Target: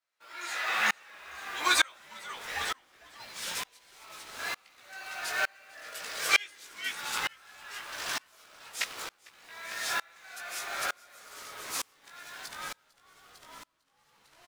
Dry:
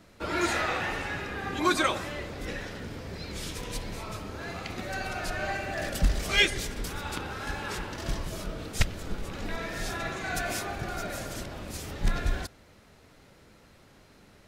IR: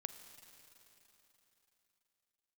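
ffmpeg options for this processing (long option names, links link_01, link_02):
-filter_complex "[0:a]highpass=1100,asplit=2[link_01][link_02];[link_02]acrusher=bits=6:mix=0:aa=0.000001,volume=-4dB[link_03];[link_01][link_03]amix=inputs=2:normalize=0,asplit=2[link_04][link_05];[link_05]adelay=17,volume=-4dB[link_06];[link_04][link_06]amix=inputs=2:normalize=0,asplit=8[link_07][link_08][link_09][link_10][link_11][link_12][link_13][link_14];[link_08]adelay=451,afreqshift=-140,volume=-7.5dB[link_15];[link_09]adelay=902,afreqshift=-280,volume=-12.4dB[link_16];[link_10]adelay=1353,afreqshift=-420,volume=-17.3dB[link_17];[link_11]adelay=1804,afreqshift=-560,volume=-22.1dB[link_18];[link_12]adelay=2255,afreqshift=-700,volume=-27dB[link_19];[link_13]adelay=2706,afreqshift=-840,volume=-31.9dB[link_20];[link_14]adelay=3157,afreqshift=-980,volume=-36.8dB[link_21];[link_07][link_15][link_16][link_17][link_18][link_19][link_20][link_21]amix=inputs=8:normalize=0,aeval=exprs='val(0)*pow(10,-32*if(lt(mod(-1.1*n/s,1),2*abs(-1.1)/1000),1-mod(-1.1*n/s,1)/(2*abs(-1.1)/1000),(mod(-1.1*n/s,1)-2*abs(-1.1)/1000)/(1-2*abs(-1.1)/1000))/20)':channel_layout=same,volume=3dB"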